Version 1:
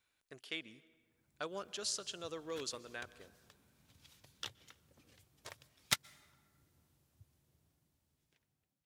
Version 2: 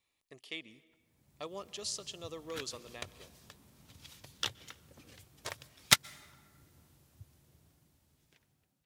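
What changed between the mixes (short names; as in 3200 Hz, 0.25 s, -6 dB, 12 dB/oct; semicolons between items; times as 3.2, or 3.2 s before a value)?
speech: add Butterworth band-stop 1500 Hz, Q 3.8; background +9.5 dB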